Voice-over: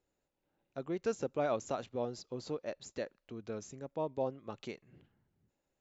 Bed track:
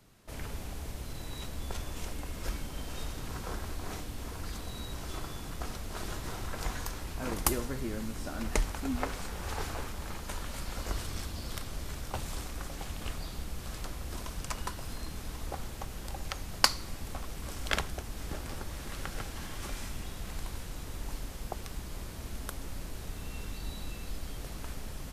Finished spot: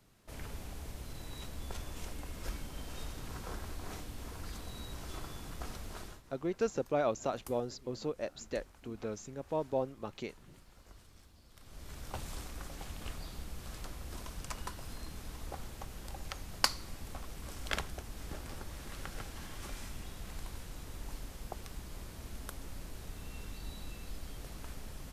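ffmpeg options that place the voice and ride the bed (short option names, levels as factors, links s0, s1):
-filter_complex "[0:a]adelay=5550,volume=1.26[s0];[1:a]volume=4.22,afade=t=out:st=5.89:d=0.34:silence=0.133352,afade=t=in:st=11.55:d=0.55:silence=0.141254[s1];[s0][s1]amix=inputs=2:normalize=0"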